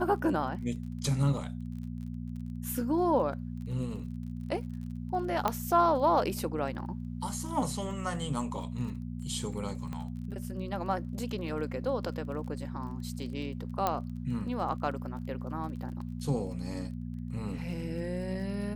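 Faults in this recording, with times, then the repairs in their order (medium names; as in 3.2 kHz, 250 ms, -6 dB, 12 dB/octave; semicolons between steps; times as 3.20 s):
crackle 26 per s -42 dBFS
hum 60 Hz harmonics 4 -38 dBFS
5.48 s: pop -14 dBFS
9.93 s: pop -26 dBFS
13.87 s: pop -14 dBFS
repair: de-click; de-hum 60 Hz, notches 4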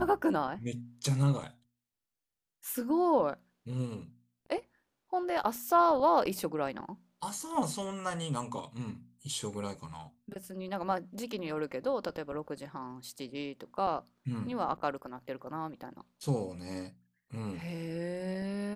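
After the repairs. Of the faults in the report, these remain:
9.93 s: pop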